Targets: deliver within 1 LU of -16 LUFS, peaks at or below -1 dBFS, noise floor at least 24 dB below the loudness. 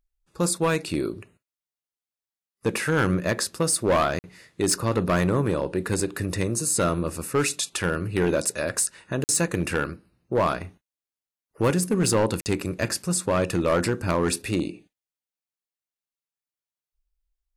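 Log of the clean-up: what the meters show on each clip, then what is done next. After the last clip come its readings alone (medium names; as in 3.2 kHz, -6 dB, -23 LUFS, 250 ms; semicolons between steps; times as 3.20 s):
clipped samples 1.2%; clipping level -15.5 dBFS; dropouts 3; longest dropout 49 ms; loudness -25.0 LUFS; peak level -15.5 dBFS; loudness target -16.0 LUFS
-> clip repair -15.5 dBFS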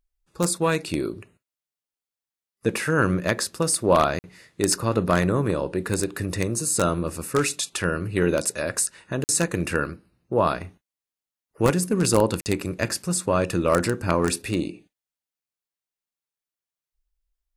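clipped samples 0.0%; dropouts 3; longest dropout 49 ms
-> interpolate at 4.19/9.24/12.41 s, 49 ms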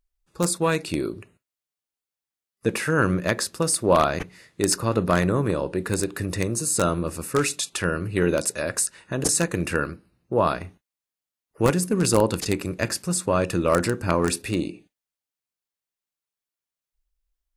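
dropouts 0; loudness -24.0 LUFS; peak level -6.5 dBFS; loudness target -16.0 LUFS
-> trim +8 dB; peak limiter -1 dBFS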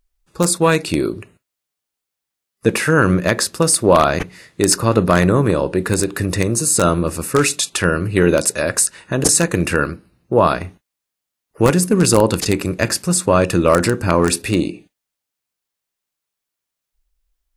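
loudness -16.5 LUFS; peak level -1.0 dBFS; noise floor -82 dBFS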